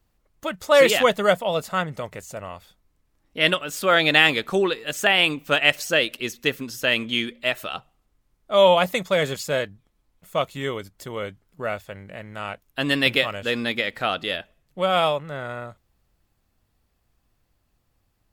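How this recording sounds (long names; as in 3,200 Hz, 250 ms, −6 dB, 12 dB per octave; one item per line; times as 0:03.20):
background noise floor −70 dBFS
spectral slope −3.5 dB per octave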